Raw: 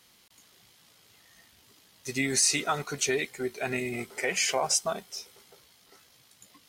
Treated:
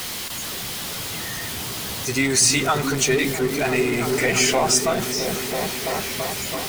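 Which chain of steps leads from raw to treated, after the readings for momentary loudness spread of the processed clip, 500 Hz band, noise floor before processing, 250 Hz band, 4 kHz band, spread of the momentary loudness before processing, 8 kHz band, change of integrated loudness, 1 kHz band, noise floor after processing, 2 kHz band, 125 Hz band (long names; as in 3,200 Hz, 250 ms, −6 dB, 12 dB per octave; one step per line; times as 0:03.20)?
11 LU, +10.5 dB, −61 dBFS, +12.0 dB, +9.5 dB, 13 LU, +8.0 dB, +6.5 dB, +9.5 dB, −30 dBFS, +9.0 dB, +13.5 dB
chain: converter with a step at zero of −30 dBFS
echo whose low-pass opens from repeat to repeat 333 ms, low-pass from 200 Hz, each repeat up 1 octave, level 0 dB
level +5.5 dB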